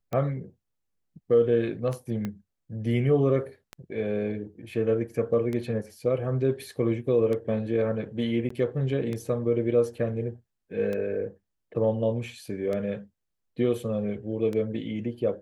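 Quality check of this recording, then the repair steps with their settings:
scratch tick 33 1/3 rpm −20 dBFS
0:02.25: click −19 dBFS
0:08.49–0:08.50: drop-out 14 ms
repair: click removal
repair the gap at 0:08.49, 14 ms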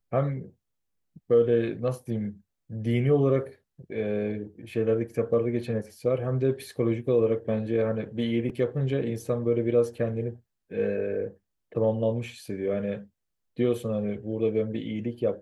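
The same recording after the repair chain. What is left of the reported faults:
0:02.25: click

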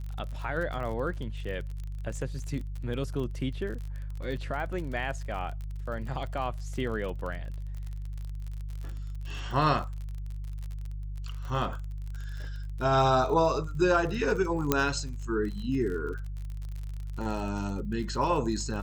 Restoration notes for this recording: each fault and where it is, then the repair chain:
surface crackle 46 per second −36 dBFS
mains hum 50 Hz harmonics 3 −36 dBFS
0:14.72: click −8 dBFS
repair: click removal
hum removal 50 Hz, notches 3

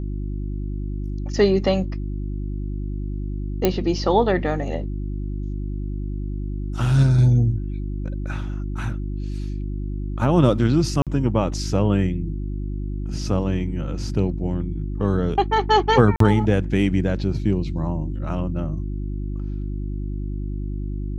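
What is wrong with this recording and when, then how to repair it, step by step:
mains hum 50 Hz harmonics 7 −27 dBFS
0:03.65: click −4 dBFS
0:11.02–0:11.07: drop-out 47 ms
0:16.16–0:16.20: drop-out 43 ms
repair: click removal
hum removal 50 Hz, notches 7
repair the gap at 0:11.02, 47 ms
repair the gap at 0:16.16, 43 ms

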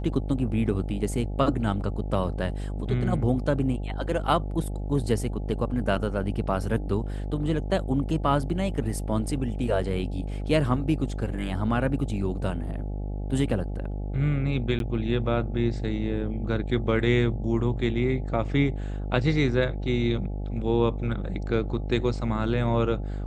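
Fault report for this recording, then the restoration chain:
mains buzz 50 Hz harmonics 17 −31 dBFS
0:14.79–0:14.80: drop-out 12 ms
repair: hum removal 50 Hz, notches 17
repair the gap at 0:14.79, 12 ms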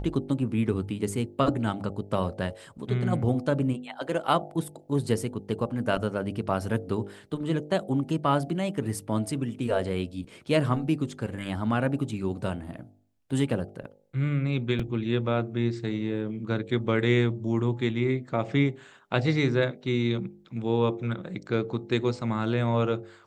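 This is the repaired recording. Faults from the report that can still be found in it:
none of them is left

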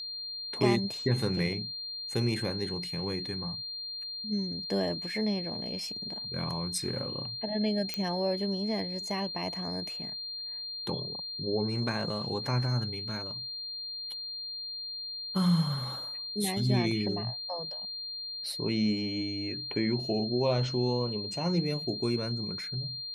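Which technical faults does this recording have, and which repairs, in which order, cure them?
whistle 4,200 Hz −36 dBFS
0:07.94: click −17 dBFS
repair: click removal
notch filter 4,200 Hz, Q 30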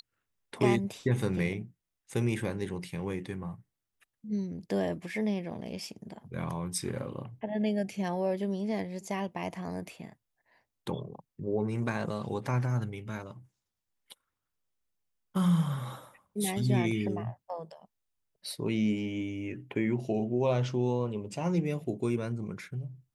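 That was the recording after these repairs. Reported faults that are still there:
none of them is left

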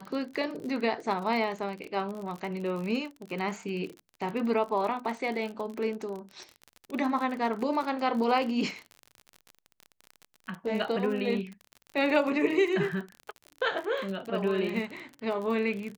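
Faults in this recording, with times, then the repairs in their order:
surface crackle 38 per second −34 dBFS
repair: click removal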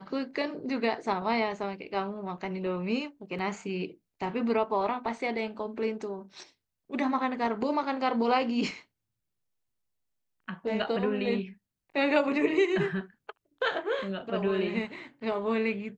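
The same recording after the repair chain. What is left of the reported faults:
none of them is left

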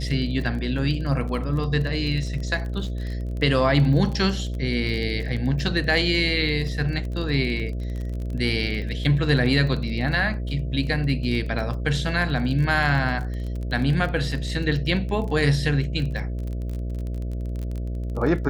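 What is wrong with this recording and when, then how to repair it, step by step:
mains buzz 60 Hz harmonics 11 −28 dBFS
surface crackle 25 per second −30 dBFS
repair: click removal
hum removal 60 Hz, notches 11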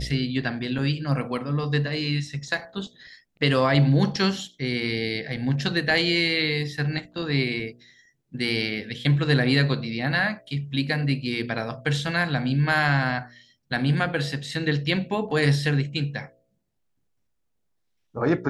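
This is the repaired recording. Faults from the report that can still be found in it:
none of them is left

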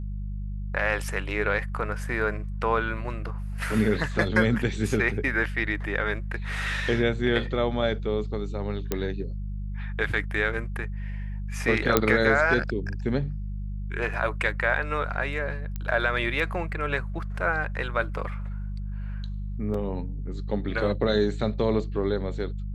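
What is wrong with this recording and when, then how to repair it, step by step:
mains hum 50 Hz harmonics 4 −32 dBFS
0:08.92: click −11 dBFS
0:11.97: click −4 dBFS
0:15.76: click −19 dBFS
0:19.74: drop-out 3.7 ms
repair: click removal
hum removal 50 Hz, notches 4
repair the gap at 0:19.74, 3.7 ms

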